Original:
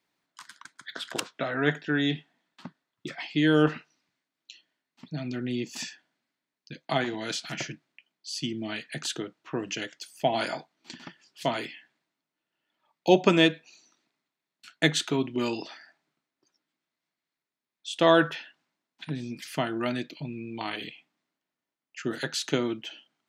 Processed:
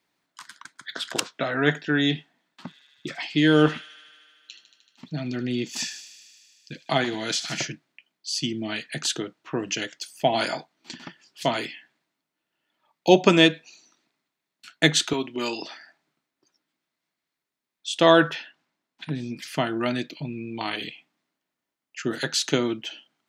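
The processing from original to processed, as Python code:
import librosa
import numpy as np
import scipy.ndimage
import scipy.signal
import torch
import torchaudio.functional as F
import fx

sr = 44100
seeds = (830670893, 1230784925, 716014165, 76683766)

y = fx.echo_wet_highpass(x, sr, ms=76, feedback_pct=80, hz=3100.0, wet_db=-10.5, at=(2.66, 7.64), fade=0.02)
y = fx.highpass(y, sr, hz=450.0, slope=6, at=(15.13, 15.62))
y = fx.high_shelf(y, sr, hz=5800.0, db=-4.5, at=(18.13, 19.99))
y = fx.dynamic_eq(y, sr, hz=5800.0, q=0.85, threshold_db=-46.0, ratio=4.0, max_db=4)
y = y * 10.0 ** (3.5 / 20.0)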